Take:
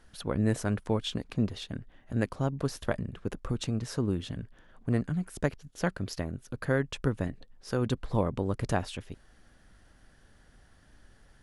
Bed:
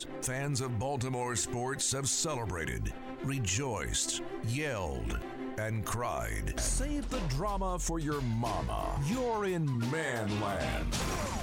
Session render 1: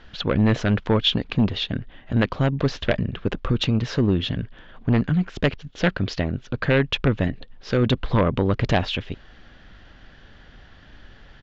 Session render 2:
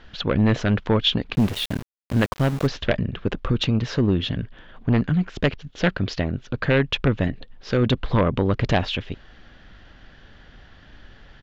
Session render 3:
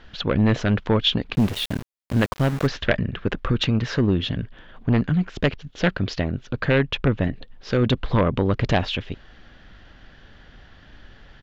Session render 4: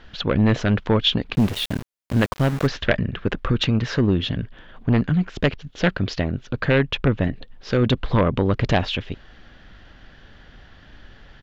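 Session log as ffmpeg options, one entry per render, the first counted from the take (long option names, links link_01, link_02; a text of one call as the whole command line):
ffmpeg -i in.wav -af "aresample=16000,aeval=exprs='0.266*sin(PI/2*2.24*val(0)/0.266)':channel_layout=same,aresample=44100,lowpass=frequency=3300:width_type=q:width=1.9" out.wav
ffmpeg -i in.wav -filter_complex "[0:a]asplit=3[link_01][link_02][link_03];[link_01]afade=type=out:start_time=1.34:duration=0.02[link_04];[link_02]aeval=exprs='val(0)*gte(abs(val(0)),0.0335)':channel_layout=same,afade=type=in:start_time=1.34:duration=0.02,afade=type=out:start_time=2.66:duration=0.02[link_05];[link_03]afade=type=in:start_time=2.66:duration=0.02[link_06];[link_04][link_05][link_06]amix=inputs=3:normalize=0" out.wav
ffmpeg -i in.wav -filter_complex "[0:a]asettb=1/sr,asplit=3[link_01][link_02][link_03];[link_01]atrim=end=2.494[link_04];[link_02]atrim=start=2.49:end=4.05,asetpts=PTS-STARTPTS,afade=type=in:duration=0.004:curve=qsin,afade=type=out:start_time=1.556:duration=0.004:curve=qsin,equalizer=frequency=1700:width=1.5:gain=5[link_05];[link_03]atrim=start=4.046[link_06];[link_04][link_05]acrossfade=duration=0.004:curve1=hsin:curve2=qsin[link_07];[link_07][link_06]acrossfade=duration=0.004:curve1=qsin:curve2=hsin,asettb=1/sr,asplit=3[link_08][link_09][link_10];[link_08]atrim=end=6.864[link_11];[link_09]atrim=start=6.86:end=7.32,asetpts=PTS-STARTPTS,afade=type=in:duration=0.004:curve=qsin,afade=type=out:start_time=0.456:duration=0.004:curve=qsin,highshelf=frequency=3900:gain=-6.5[link_12];[link_10]atrim=start=7.316[link_13];[link_11][link_12]acrossfade=duration=0.004:curve1=hsin:curve2=qsin[link_14];[link_14][link_13]acrossfade=duration=0.004:curve1=qsin:curve2=hsin" out.wav
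ffmpeg -i in.wav -af "volume=1dB" out.wav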